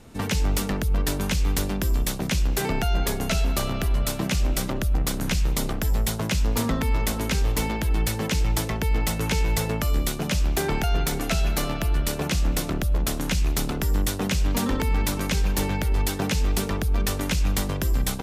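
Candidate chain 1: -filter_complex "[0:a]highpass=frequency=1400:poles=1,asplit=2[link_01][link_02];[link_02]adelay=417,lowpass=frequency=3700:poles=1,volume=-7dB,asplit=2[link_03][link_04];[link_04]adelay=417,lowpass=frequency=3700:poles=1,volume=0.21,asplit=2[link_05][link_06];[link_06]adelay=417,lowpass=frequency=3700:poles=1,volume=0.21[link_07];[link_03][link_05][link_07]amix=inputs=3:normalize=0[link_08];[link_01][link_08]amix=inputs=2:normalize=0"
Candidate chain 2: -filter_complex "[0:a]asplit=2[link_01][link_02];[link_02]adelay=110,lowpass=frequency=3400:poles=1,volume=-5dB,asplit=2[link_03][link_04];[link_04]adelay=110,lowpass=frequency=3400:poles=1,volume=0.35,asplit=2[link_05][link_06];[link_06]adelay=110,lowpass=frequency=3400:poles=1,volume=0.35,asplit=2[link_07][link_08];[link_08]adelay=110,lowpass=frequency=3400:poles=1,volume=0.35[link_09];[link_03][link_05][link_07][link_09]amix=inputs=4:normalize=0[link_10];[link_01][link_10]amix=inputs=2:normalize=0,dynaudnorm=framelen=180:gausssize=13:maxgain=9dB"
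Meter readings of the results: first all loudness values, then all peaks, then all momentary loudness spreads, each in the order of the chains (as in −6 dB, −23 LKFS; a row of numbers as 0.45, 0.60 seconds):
−31.0, −17.0 LKFS; −12.5, −2.5 dBFS; 3, 2 LU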